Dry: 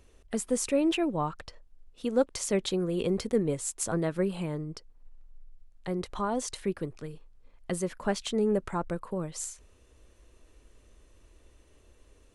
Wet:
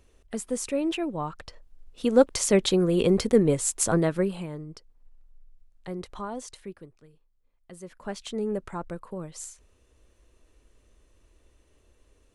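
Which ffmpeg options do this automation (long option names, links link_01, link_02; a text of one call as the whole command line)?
ffmpeg -i in.wav -af "volume=19dB,afade=type=in:start_time=1.24:duration=0.92:silence=0.375837,afade=type=out:start_time=3.92:duration=0.55:silence=0.316228,afade=type=out:start_time=6.06:duration=0.91:silence=0.251189,afade=type=in:start_time=7.71:duration=0.64:silence=0.251189" out.wav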